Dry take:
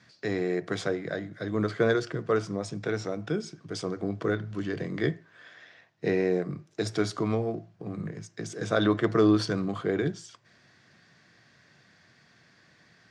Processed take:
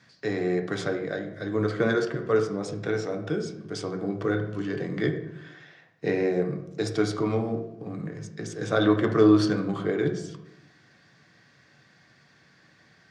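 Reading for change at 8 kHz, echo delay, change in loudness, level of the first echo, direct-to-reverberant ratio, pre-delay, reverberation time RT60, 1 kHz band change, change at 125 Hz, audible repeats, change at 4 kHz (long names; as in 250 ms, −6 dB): 0.0 dB, no echo audible, +2.5 dB, no echo audible, 4.5 dB, 3 ms, 0.85 s, +2.0 dB, +2.0 dB, no echo audible, +0.5 dB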